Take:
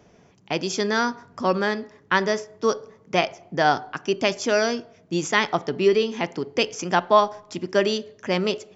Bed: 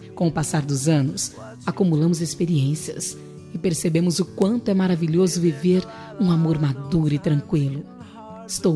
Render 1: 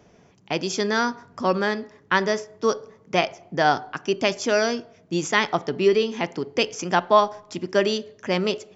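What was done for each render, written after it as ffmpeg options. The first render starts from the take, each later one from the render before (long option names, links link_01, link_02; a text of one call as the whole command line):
ffmpeg -i in.wav -af anull out.wav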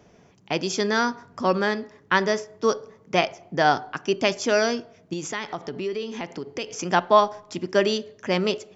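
ffmpeg -i in.wav -filter_complex "[0:a]asettb=1/sr,asplit=3[link_01][link_02][link_03];[link_01]atrim=end=5.134[link_04];[link_02]atrim=start=5.13:end=6.74,asetpts=PTS-STARTPTS,afade=type=in:duration=0.004:curve=qsin,afade=type=out:start_time=1.606:duration=0.004:curve=qsin,acompressor=threshold=-30dB:ratio=2.5:attack=3.2:release=140:knee=1:detection=peak[link_05];[link_03]atrim=start=6.736[link_06];[link_04][link_05]acrossfade=duration=0.004:curve1=hsin:curve2=qsin[link_07];[link_07][link_06]acrossfade=duration=0.004:curve1=qsin:curve2=hsin" out.wav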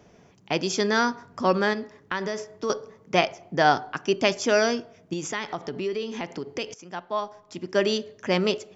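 ffmpeg -i in.wav -filter_complex "[0:a]asettb=1/sr,asplit=3[link_01][link_02][link_03];[link_01]atrim=end=1.734[link_04];[link_02]atrim=start=1.73:end=2.7,asetpts=PTS-STARTPTS,afade=type=in:duration=0.004:curve=qsin,afade=type=out:start_time=0.966:duration=0.004:curve=qsin,acompressor=threshold=-26dB:ratio=3:attack=3.2:release=140:knee=1:detection=peak[link_05];[link_03]atrim=start=2.696[link_06];[link_04][link_05]acrossfade=duration=0.004:curve1=hsin:curve2=qsin[link_07];[link_07][link_06]acrossfade=duration=0.004:curve1=qsin:curve2=hsin,asettb=1/sr,asplit=3[link_08][link_09][link_10];[link_08]atrim=end=4.414[link_11];[link_09]atrim=start=4.41:end=5.36,asetpts=PTS-STARTPTS,afade=type=in:duration=0.004:curve=qsin,afade=type=out:start_time=0.946:duration=0.004:curve=qsin,bandreject=frequency=4200:width=12[link_12];[link_10]atrim=start=5.356[link_13];[link_11][link_12]acrossfade=duration=0.004:curve1=hsin:curve2=qsin[link_14];[link_14][link_13]acrossfade=duration=0.004:curve1=qsin:curve2=hsin,asplit=2[link_15][link_16];[link_15]atrim=end=6.74,asetpts=PTS-STARTPTS,afade=type=out:start_time=6.736:duration=0.004:curve=hsin:silence=0.158489[link_17];[link_16]atrim=start=6.74,asetpts=PTS-STARTPTS,afade=type=in:duration=1.24:curve=qua:silence=0.158489[link_18];[link_17][link_18]concat=n=2:v=0:a=1" out.wav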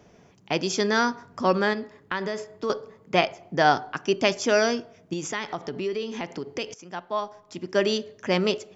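ffmpeg -i in.wav -filter_complex "[0:a]asettb=1/sr,asplit=3[link_01][link_02][link_03];[link_01]atrim=end=1.624[link_04];[link_02]atrim=start=1.62:end=3.45,asetpts=PTS-STARTPTS,afade=type=in:duration=0.004:curve=qsin,afade=type=out:start_time=1.826:duration=0.004:curve=qsin,bandreject=frequency=5800:width=5.9[link_05];[link_03]atrim=start=3.446[link_06];[link_04][link_05]acrossfade=duration=0.004:curve1=hsin:curve2=qsin[link_07];[link_07][link_06]acrossfade=duration=0.004:curve1=qsin:curve2=hsin" out.wav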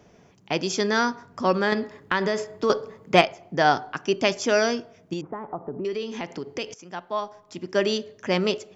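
ffmpeg -i in.wav -filter_complex "[0:a]asettb=1/sr,asplit=3[link_01][link_02][link_03];[link_01]atrim=end=1.724[link_04];[link_02]atrim=start=1.72:end=3.22,asetpts=PTS-STARTPTS,afade=type=in:duration=0.004:curve=qsin,afade=type=out:start_time=1.496:duration=0.004:curve=qsin,acontrast=34[link_05];[link_03]atrim=start=3.216[link_06];[link_04][link_05]acrossfade=duration=0.004:curve1=hsin:curve2=qsin[link_07];[link_07][link_06]acrossfade=duration=0.004:curve1=qsin:curve2=hsin,asettb=1/sr,asplit=3[link_08][link_09][link_10];[link_08]atrim=end=5.214[link_11];[link_09]atrim=start=5.21:end=5.85,asetpts=PTS-STARTPTS,afade=type=in:duration=0.004:curve=qsin,afade=type=out:start_time=0.636:duration=0.004:curve=qsin,lowpass=frequency=1100:width=0.5412,lowpass=frequency=1100:width=1.3066[link_12];[link_10]atrim=start=5.846[link_13];[link_11][link_12]acrossfade=duration=0.004:curve1=hsin:curve2=qsin[link_14];[link_14][link_13]acrossfade=duration=0.004:curve1=qsin:curve2=hsin" out.wav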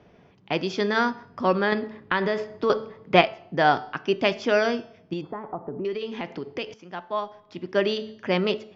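ffmpeg -i in.wav -af "lowpass=frequency=4200:width=0.5412,lowpass=frequency=4200:width=1.3066,bandreject=frequency=219.3:width_type=h:width=4,bandreject=frequency=438.6:width_type=h:width=4,bandreject=frequency=657.9:width_type=h:width=4,bandreject=frequency=877.2:width_type=h:width=4,bandreject=frequency=1096.5:width_type=h:width=4,bandreject=frequency=1315.8:width_type=h:width=4,bandreject=frequency=1535.1:width_type=h:width=4,bandreject=frequency=1754.4:width_type=h:width=4,bandreject=frequency=1973.7:width_type=h:width=4,bandreject=frequency=2193:width_type=h:width=4,bandreject=frequency=2412.3:width_type=h:width=4,bandreject=frequency=2631.6:width_type=h:width=4,bandreject=frequency=2850.9:width_type=h:width=4,bandreject=frequency=3070.2:width_type=h:width=4,bandreject=frequency=3289.5:width_type=h:width=4,bandreject=frequency=3508.8:width_type=h:width=4,bandreject=frequency=3728.1:width_type=h:width=4,bandreject=frequency=3947.4:width_type=h:width=4,bandreject=frequency=4166.7:width_type=h:width=4,bandreject=frequency=4386:width_type=h:width=4,bandreject=frequency=4605.3:width_type=h:width=4,bandreject=frequency=4824.6:width_type=h:width=4,bandreject=frequency=5043.9:width_type=h:width=4,bandreject=frequency=5263.2:width_type=h:width=4,bandreject=frequency=5482.5:width_type=h:width=4,bandreject=frequency=5701.8:width_type=h:width=4,bandreject=frequency=5921.1:width_type=h:width=4,bandreject=frequency=6140.4:width_type=h:width=4,bandreject=frequency=6359.7:width_type=h:width=4,bandreject=frequency=6579:width_type=h:width=4,bandreject=frequency=6798.3:width_type=h:width=4,bandreject=frequency=7017.6:width_type=h:width=4,bandreject=frequency=7236.9:width_type=h:width=4,bandreject=frequency=7456.2:width_type=h:width=4,bandreject=frequency=7675.5:width_type=h:width=4" out.wav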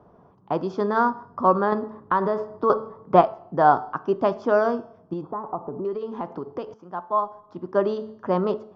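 ffmpeg -i in.wav -af "highshelf=frequency=1600:width_type=q:width=3:gain=-12.5" out.wav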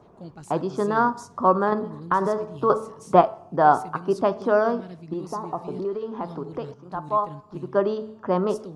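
ffmpeg -i in.wav -i bed.wav -filter_complex "[1:a]volume=-20.5dB[link_01];[0:a][link_01]amix=inputs=2:normalize=0" out.wav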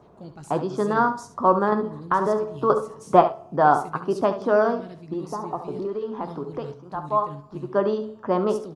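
ffmpeg -i in.wav -filter_complex "[0:a]asplit=2[link_01][link_02];[link_02]adelay=14,volume=-12dB[link_03];[link_01][link_03]amix=inputs=2:normalize=0,aecho=1:1:70:0.251" out.wav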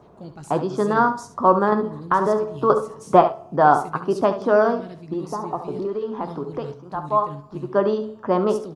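ffmpeg -i in.wav -af "volume=2.5dB,alimiter=limit=-2dB:level=0:latency=1" out.wav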